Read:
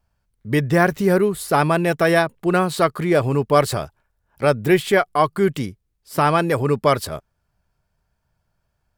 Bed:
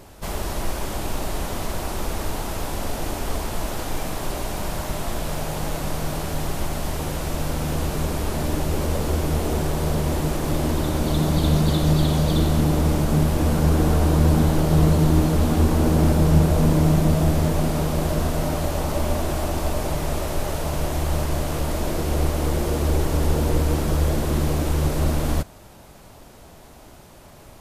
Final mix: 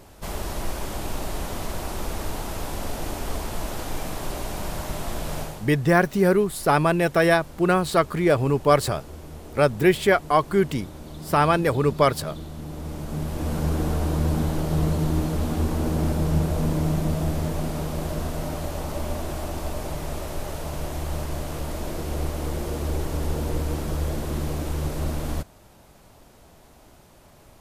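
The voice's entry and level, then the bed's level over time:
5.15 s, -2.0 dB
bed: 5.41 s -3 dB
5.72 s -17.5 dB
12.55 s -17.5 dB
13.57 s -6 dB

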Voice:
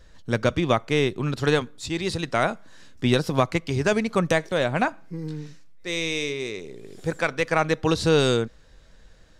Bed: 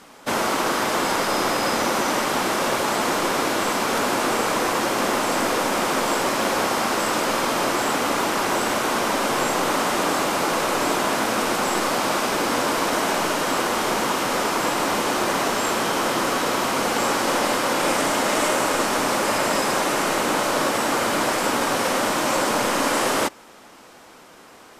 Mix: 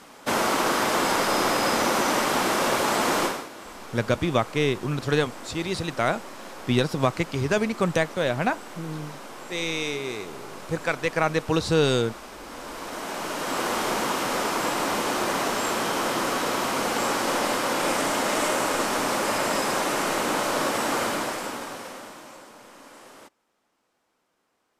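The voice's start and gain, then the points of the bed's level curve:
3.65 s, -1.5 dB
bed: 3.24 s -1 dB
3.49 s -19 dB
12.39 s -19 dB
13.69 s -3.5 dB
21.03 s -3.5 dB
22.53 s -26.5 dB

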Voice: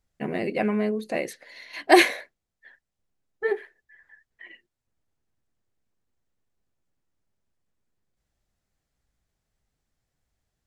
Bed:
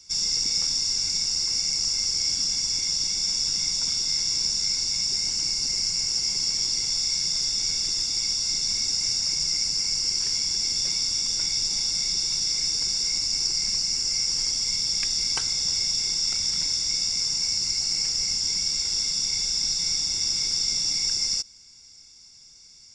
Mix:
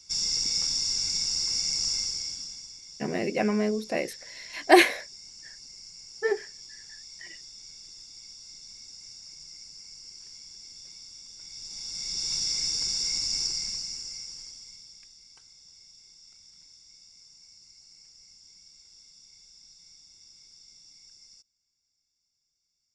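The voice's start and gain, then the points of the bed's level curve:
2.80 s, -1.0 dB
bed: 1.95 s -3 dB
2.79 s -21 dB
11.36 s -21 dB
12.33 s -3.5 dB
13.4 s -3.5 dB
15.19 s -28.5 dB

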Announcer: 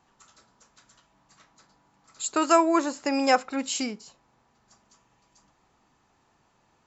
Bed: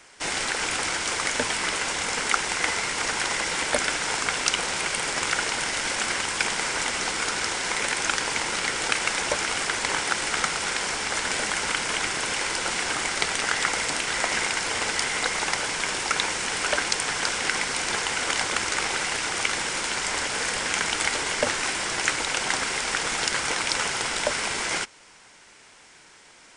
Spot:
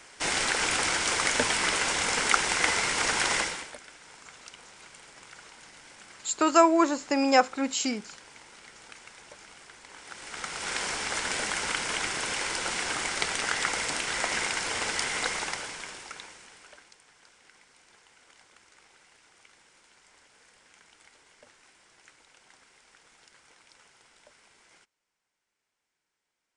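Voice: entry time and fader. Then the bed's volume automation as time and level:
4.05 s, +0.5 dB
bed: 3.4 s 0 dB
3.8 s -24 dB
9.89 s -24 dB
10.76 s -4 dB
15.3 s -4 dB
17.01 s -32.5 dB

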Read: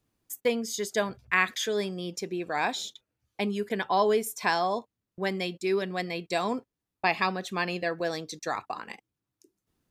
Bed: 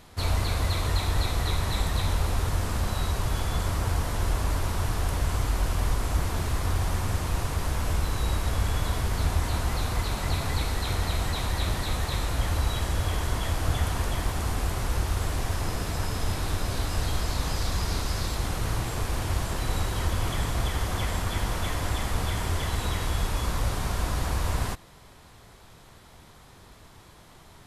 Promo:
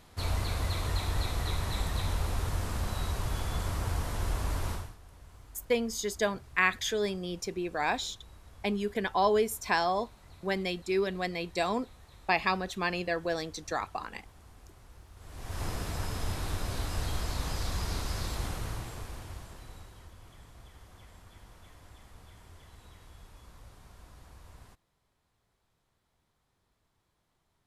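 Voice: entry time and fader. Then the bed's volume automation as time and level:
5.25 s, -1.5 dB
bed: 4.73 s -5.5 dB
4.98 s -26.5 dB
15.13 s -26.5 dB
15.62 s -5.5 dB
18.44 s -5.5 dB
20.14 s -25.5 dB

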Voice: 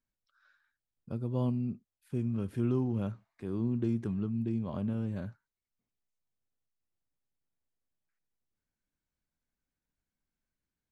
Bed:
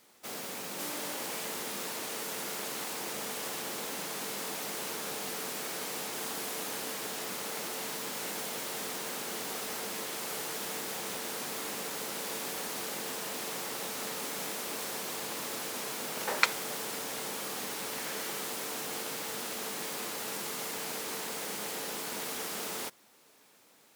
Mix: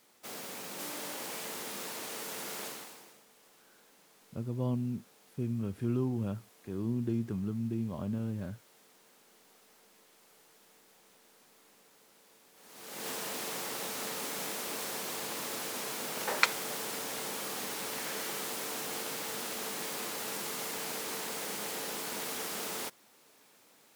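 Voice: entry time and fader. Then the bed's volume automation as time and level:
3.25 s, -1.5 dB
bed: 2.66 s -3 dB
3.25 s -25 dB
12.52 s -25 dB
13.07 s -0.5 dB

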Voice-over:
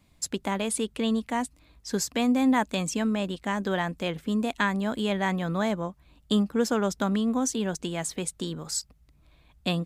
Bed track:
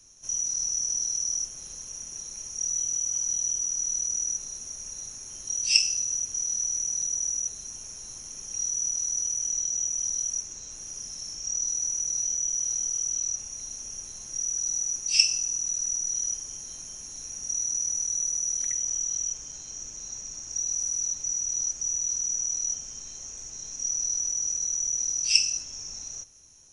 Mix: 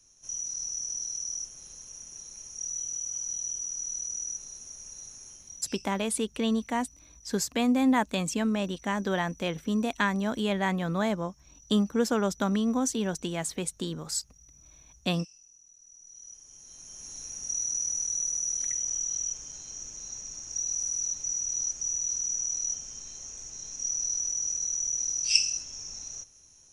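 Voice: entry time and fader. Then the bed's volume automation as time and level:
5.40 s, -1.0 dB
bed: 5.29 s -6 dB
5.85 s -28 dB
15.77 s -28 dB
17.09 s -2 dB

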